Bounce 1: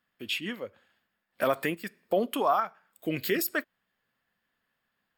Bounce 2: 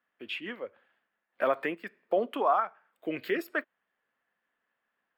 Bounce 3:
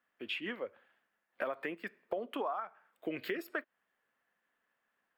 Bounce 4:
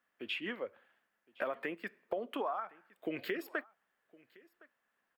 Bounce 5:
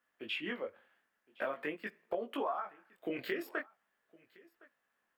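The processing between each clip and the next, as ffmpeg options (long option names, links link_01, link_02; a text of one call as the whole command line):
ffmpeg -i in.wav -filter_complex "[0:a]acrossover=split=270 2900:gain=0.178 1 0.0891[link_01][link_02][link_03];[link_01][link_02][link_03]amix=inputs=3:normalize=0" out.wav
ffmpeg -i in.wav -af "acompressor=threshold=-33dB:ratio=10" out.wav
ffmpeg -i in.wav -af "aecho=1:1:1063:0.0631" out.wav
ffmpeg -i in.wav -af "flanger=delay=17.5:depth=5.9:speed=0.46,volume=3dB" out.wav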